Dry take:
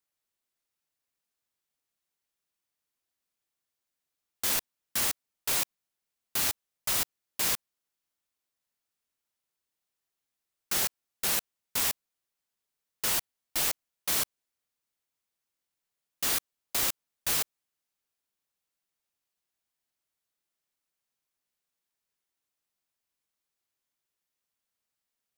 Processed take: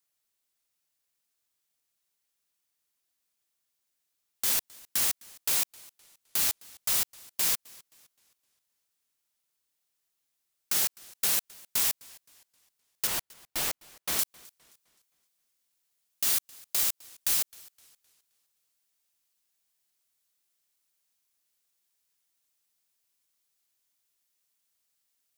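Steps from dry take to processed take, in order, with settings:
high-shelf EQ 2,900 Hz +7 dB, from 0:13.07 −2.5 dB, from 0:14.19 +10.5 dB
downward compressor, threshold −22 dBFS, peak gain reduction 7.5 dB
brickwall limiter −14 dBFS, peak gain reduction 4.5 dB
feedback echo with a swinging delay time 260 ms, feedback 39%, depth 139 cents, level −23 dB

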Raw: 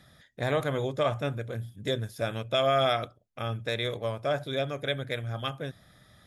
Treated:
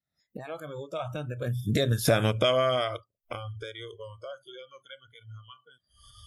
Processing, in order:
camcorder AGC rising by 70 dB per second
source passing by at 0:02.12, 19 m/s, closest 4.7 metres
noise reduction from a noise print of the clip's start 26 dB
level +6.5 dB

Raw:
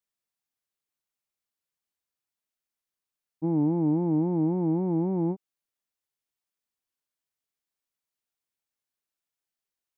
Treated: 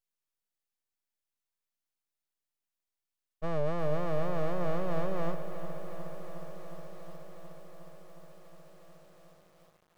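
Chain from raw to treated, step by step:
high-pass filter 260 Hz 6 dB per octave
full-wave rectification
feedback echo at a low word length 362 ms, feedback 80%, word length 9 bits, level −11 dB

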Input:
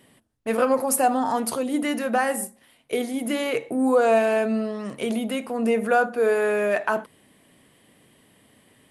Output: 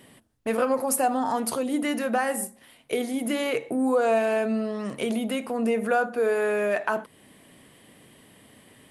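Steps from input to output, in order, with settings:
downward compressor 1.5 to 1, threshold −37 dBFS, peak gain reduction 8 dB
level +4 dB

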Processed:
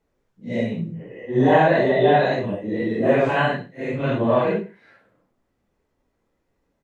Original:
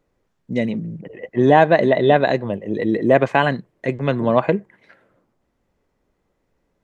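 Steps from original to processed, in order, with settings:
random phases in long frames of 200 ms
single-tap delay 105 ms −20 dB
level −2 dB

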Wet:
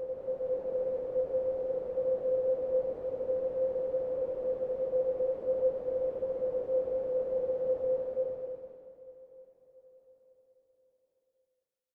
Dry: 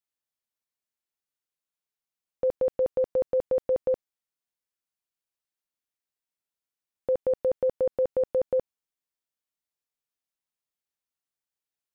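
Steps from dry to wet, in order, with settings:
repeating echo 201 ms, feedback 33%, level −20 dB
extreme stretch with random phases 4.9×, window 0.50 s, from 0:06.98
level −5 dB

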